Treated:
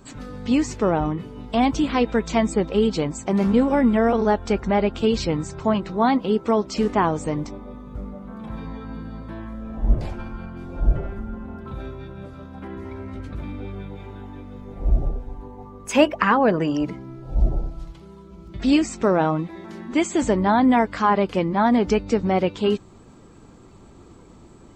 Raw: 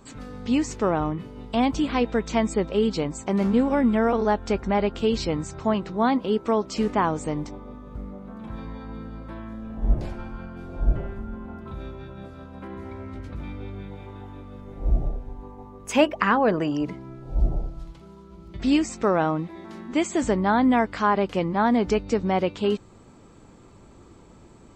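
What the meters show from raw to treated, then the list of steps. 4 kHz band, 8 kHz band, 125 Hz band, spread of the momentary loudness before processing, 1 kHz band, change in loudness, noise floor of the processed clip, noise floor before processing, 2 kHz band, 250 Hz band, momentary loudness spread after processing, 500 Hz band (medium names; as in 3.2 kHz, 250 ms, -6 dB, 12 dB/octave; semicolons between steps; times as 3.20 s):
+2.5 dB, +2.5 dB, +3.0 dB, 18 LU, +2.5 dB, +2.5 dB, -47 dBFS, -50 dBFS, +2.0 dB, +3.0 dB, 18 LU, +2.5 dB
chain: coarse spectral quantiser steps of 15 dB; trim +3 dB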